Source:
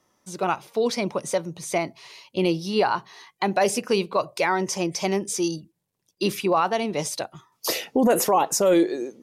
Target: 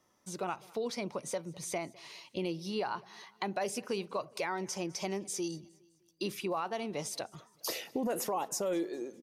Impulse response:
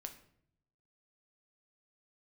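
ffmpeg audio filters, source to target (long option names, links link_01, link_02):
-filter_complex "[0:a]acompressor=threshold=-34dB:ratio=2,asplit=2[link_01][link_02];[link_02]aecho=0:1:205|410|615:0.0631|0.0309|0.0151[link_03];[link_01][link_03]amix=inputs=2:normalize=0,volume=-4.5dB"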